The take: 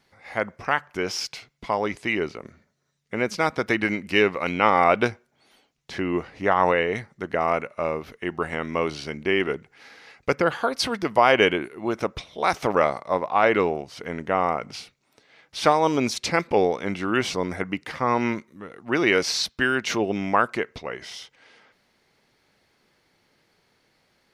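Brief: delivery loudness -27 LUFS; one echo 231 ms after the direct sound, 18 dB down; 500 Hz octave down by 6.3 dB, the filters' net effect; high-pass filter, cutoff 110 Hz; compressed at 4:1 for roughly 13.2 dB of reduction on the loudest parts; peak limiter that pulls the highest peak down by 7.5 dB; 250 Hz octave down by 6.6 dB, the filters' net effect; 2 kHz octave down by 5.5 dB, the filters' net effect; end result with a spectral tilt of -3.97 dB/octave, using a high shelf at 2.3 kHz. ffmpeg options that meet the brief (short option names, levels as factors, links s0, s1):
-af "highpass=110,equalizer=f=250:t=o:g=-6.5,equalizer=f=500:t=o:g=-5.5,equalizer=f=2000:t=o:g=-3,highshelf=f=2300:g=-7,acompressor=threshold=0.0224:ratio=4,alimiter=level_in=1.06:limit=0.0631:level=0:latency=1,volume=0.944,aecho=1:1:231:0.126,volume=3.98"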